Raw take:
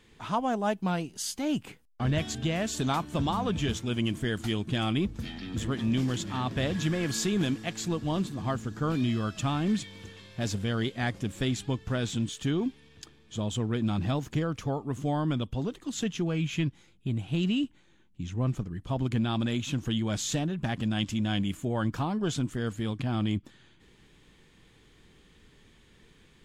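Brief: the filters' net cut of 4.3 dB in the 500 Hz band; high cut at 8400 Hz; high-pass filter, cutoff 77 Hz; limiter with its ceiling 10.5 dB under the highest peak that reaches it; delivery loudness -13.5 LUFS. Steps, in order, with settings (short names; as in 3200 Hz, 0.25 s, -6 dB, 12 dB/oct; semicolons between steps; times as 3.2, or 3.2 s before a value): HPF 77 Hz; LPF 8400 Hz; bell 500 Hz -6 dB; gain +23 dB; limiter -4 dBFS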